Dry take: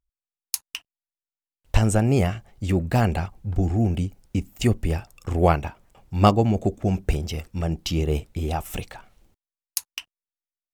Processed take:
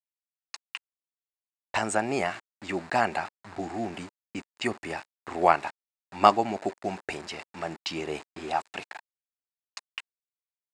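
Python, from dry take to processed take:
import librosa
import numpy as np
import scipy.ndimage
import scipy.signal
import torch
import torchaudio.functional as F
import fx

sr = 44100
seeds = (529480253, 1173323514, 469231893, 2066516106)

y = fx.env_lowpass(x, sr, base_hz=1900.0, full_db=-19.5)
y = np.where(np.abs(y) >= 10.0 ** (-36.5 / 20.0), y, 0.0)
y = fx.cabinet(y, sr, low_hz=480.0, low_slope=12, high_hz=7700.0, hz=(490.0, 930.0, 1800.0, 3200.0, 5900.0), db=(-9, 3, 3, -7, -8))
y = F.gain(torch.from_numpy(y), 2.0).numpy()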